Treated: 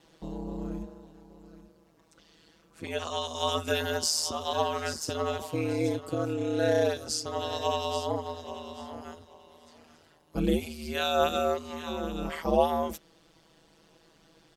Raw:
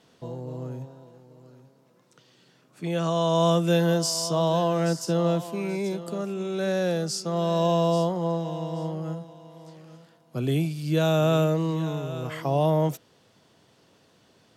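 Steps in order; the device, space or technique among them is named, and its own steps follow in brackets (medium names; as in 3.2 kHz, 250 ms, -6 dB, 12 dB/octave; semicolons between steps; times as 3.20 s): ring-modulated robot voice (ring modulator 79 Hz; comb 6.1 ms, depth 90%)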